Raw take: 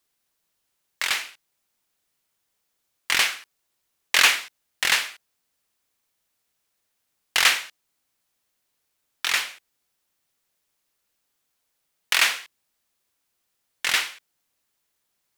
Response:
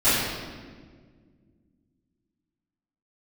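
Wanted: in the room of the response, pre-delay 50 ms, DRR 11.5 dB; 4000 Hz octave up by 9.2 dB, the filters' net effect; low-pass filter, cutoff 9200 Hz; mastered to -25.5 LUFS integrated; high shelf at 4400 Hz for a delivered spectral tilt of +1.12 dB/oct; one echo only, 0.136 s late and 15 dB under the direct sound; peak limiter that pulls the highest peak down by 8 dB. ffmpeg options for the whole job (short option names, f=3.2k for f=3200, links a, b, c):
-filter_complex "[0:a]lowpass=9.2k,equalizer=f=4k:t=o:g=8,highshelf=f=4.4k:g=7.5,alimiter=limit=-3.5dB:level=0:latency=1,aecho=1:1:136:0.178,asplit=2[a][b];[1:a]atrim=start_sample=2205,adelay=50[c];[b][c]afir=irnorm=-1:irlink=0,volume=-30.5dB[d];[a][d]amix=inputs=2:normalize=0,volume=-7.5dB"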